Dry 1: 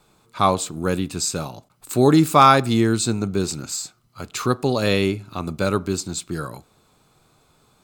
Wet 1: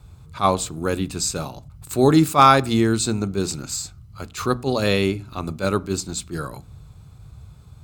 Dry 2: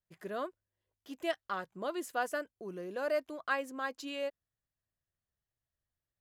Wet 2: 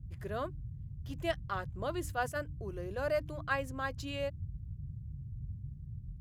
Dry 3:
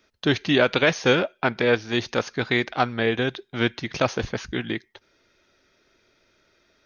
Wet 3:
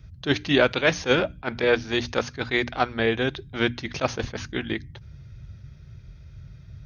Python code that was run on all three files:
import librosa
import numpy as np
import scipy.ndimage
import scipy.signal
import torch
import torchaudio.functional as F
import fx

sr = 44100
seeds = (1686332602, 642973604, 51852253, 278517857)

y = fx.dmg_noise_band(x, sr, seeds[0], low_hz=38.0, high_hz=140.0, level_db=-42.0)
y = fx.hum_notches(y, sr, base_hz=60, count=5)
y = fx.attack_slew(y, sr, db_per_s=300.0)